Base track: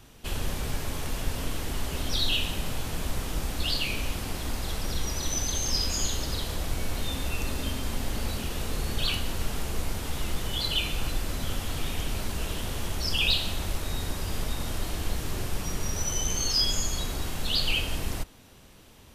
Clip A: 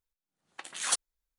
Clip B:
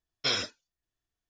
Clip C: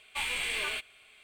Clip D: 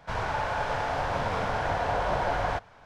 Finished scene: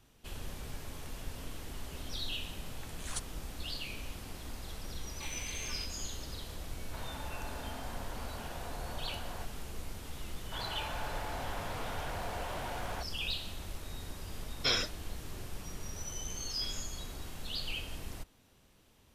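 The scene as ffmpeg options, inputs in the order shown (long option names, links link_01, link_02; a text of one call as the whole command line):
ffmpeg -i bed.wav -i cue0.wav -i cue1.wav -i cue2.wav -i cue3.wav -filter_complex "[4:a]asplit=2[link_01][link_02];[2:a]asplit=2[link_03][link_04];[0:a]volume=-12dB[link_05];[link_01]acompressor=threshold=-33dB:ratio=6:attack=3.2:release=140:knee=1:detection=peak[link_06];[link_02]asoftclip=type=hard:threshold=-31dB[link_07];[link_03]dynaudnorm=framelen=140:gausssize=3:maxgain=11.5dB[link_08];[link_04]acompressor=threshold=-31dB:ratio=6:attack=3.2:release=140:knee=1:detection=peak[link_09];[1:a]atrim=end=1.38,asetpts=PTS-STARTPTS,volume=-12dB,afade=type=in:duration=0.004:curve=hsin,afade=type=out:start_time=1.376:duration=0.004:curve=hsin,adelay=2240[link_10];[3:a]atrim=end=1.23,asetpts=PTS-STARTPTS,volume=-13dB,afade=type=in:duration=0.004:curve=hsin,afade=type=out:start_time=1.226:duration=0.004:curve=hsin,adelay=222705S[link_11];[link_06]atrim=end=2.85,asetpts=PTS-STARTPTS,volume=-9.5dB,afade=type=in:duration=0.004:curve=hsin,afade=type=out:start_time=2.846:duration=0.004:curve=hsin,adelay=6860[link_12];[link_07]atrim=end=2.85,asetpts=PTS-STARTPTS,volume=-7.5dB,afade=type=in:duration=0.004:curve=hsin,afade=type=out:start_time=2.846:duration=0.004:curve=hsin,adelay=10440[link_13];[link_08]atrim=end=1.29,asetpts=PTS-STARTPTS,volume=-12dB,afade=type=in:duration=0.004:curve=hsin,afade=type=out:start_time=1.286:duration=0.004:curve=hsin,adelay=14400[link_14];[link_09]atrim=end=1.29,asetpts=PTS-STARTPTS,volume=-15dB,afade=type=in:duration=0.004:curve=hsin,afade=type=out:start_time=1.286:duration=0.004:curve=hsin,adelay=16370[link_15];[link_05][link_10][link_11][link_12][link_13][link_14][link_15]amix=inputs=7:normalize=0" out.wav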